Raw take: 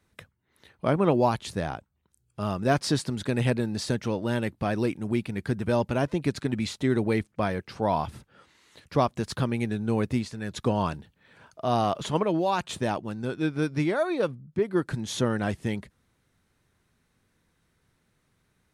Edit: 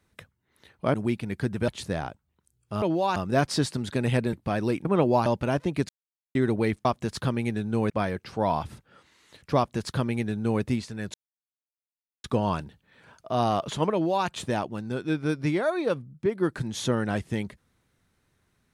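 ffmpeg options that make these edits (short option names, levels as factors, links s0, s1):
-filter_complex "[0:a]asplit=13[s0][s1][s2][s3][s4][s5][s6][s7][s8][s9][s10][s11][s12];[s0]atrim=end=0.942[s13];[s1]atrim=start=4.998:end=5.742[s14];[s2]atrim=start=1.348:end=2.492[s15];[s3]atrim=start=12.258:end=12.602[s16];[s4]atrim=start=2.488:end=3.662[s17];[s5]atrim=start=4.478:end=5.002[s18];[s6]atrim=start=0.938:end=1.352[s19];[s7]atrim=start=5.738:end=6.37,asetpts=PTS-STARTPTS,afade=t=out:st=0.628:d=0.004:c=hsin[s20];[s8]atrim=start=6.37:end=6.83,asetpts=PTS-STARTPTS,volume=0[s21];[s9]atrim=start=6.83:end=7.332,asetpts=PTS-STARTPTS,afade=t=in:d=0.004:c=hsin[s22];[s10]atrim=start=8.998:end=10.052[s23];[s11]atrim=start=7.328:end=10.57,asetpts=PTS-STARTPTS,afade=t=out:st=3.238:d=0.004:c=hsin,apad=pad_dur=1.1[s24];[s12]atrim=start=10.57,asetpts=PTS-STARTPTS,afade=t=in:d=0.004:c=hsin[s25];[s13][s14]acrossfade=d=0.004:c1=hsin:c2=hsin[s26];[s26][s15]acrossfade=d=0.004:c1=hsin:c2=hsin[s27];[s27][s16]acrossfade=d=0.004:c1=hsin:c2=hsin[s28];[s28][s17]acrossfade=d=0.004:c1=hsin:c2=hsin[s29];[s29][s18]acrossfade=d=0.004:c1=hsin:c2=hsin[s30];[s30][s19]acrossfade=d=0.004:c1=hsin:c2=hsin[s31];[s20][s21][s22]concat=n=3:v=0:a=1[s32];[s31][s32]acrossfade=d=0.004:c1=hsin:c2=hsin[s33];[s33][s23]acrossfade=d=0.004:c1=hsin:c2=hsin[s34];[s24][s25]concat=n=2:v=0:a=1[s35];[s34][s35]acrossfade=d=0.004:c1=hsin:c2=hsin"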